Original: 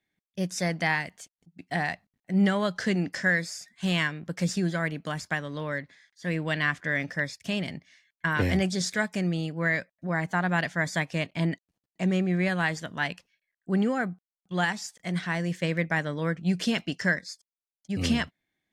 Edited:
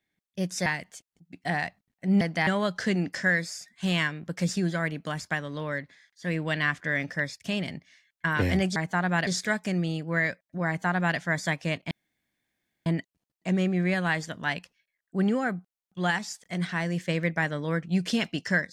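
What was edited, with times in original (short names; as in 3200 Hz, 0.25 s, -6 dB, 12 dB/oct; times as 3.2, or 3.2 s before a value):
0.66–0.92 move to 2.47
10.16–10.67 copy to 8.76
11.4 insert room tone 0.95 s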